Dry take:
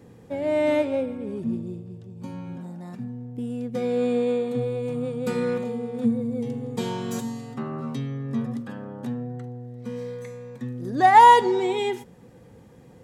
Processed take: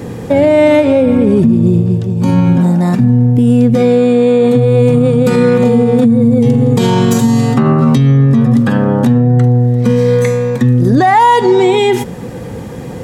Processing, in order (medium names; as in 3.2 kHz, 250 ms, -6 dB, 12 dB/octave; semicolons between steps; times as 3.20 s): dynamic bell 120 Hz, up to +6 dB, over -41 dBFS, Q 0.87; compression 6:1, threshold -28 dBFS, peak gain reduction 18 dB; loudness maximiser +26 dB; trim -1 dB